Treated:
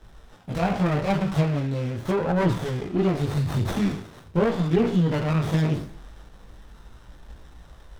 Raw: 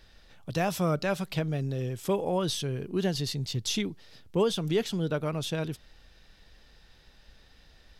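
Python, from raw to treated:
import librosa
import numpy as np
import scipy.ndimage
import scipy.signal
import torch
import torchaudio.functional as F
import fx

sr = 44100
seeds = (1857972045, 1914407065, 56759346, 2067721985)

p1 = fx.spec_trails(x, sr, decay_s=0.54)
p2 = fx.env_lowpass_down(p1, sr, base_hz=1600.0, full_db=-22.5)
p3 = fx.peak_eq(p2, sr, hz=460.0, db=-5.5, octaves=1.6)
p4 = fx.rider(p3, sr, range_db=10, speed_s=0.5)
p5 = p3 + (p4 * 10.0 ** (-1.0 / 20.0))
p6 = fx.chorus_voices(p5, sr, voices=2, hz=0.41, base_ms=19, depth_ms=2.2, mix_pct=55)
p7 = fx.running_max(p6, sr, window=17)
y = p7 * 10.0 ** (6.0 / 20.0)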